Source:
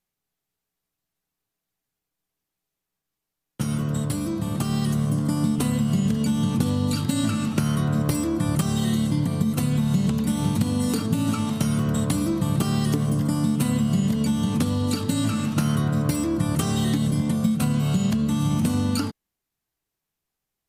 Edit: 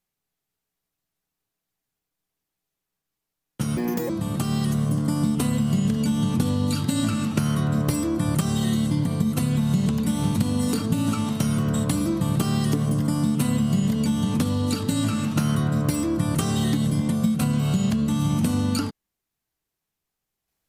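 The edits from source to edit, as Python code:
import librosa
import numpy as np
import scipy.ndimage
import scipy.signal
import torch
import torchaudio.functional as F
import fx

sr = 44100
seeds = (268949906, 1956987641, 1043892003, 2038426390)

y = fx.edit(x, sr, fx.speed_span(start_s=3.77, length_s=0.53, speed=1.63), tone=tone)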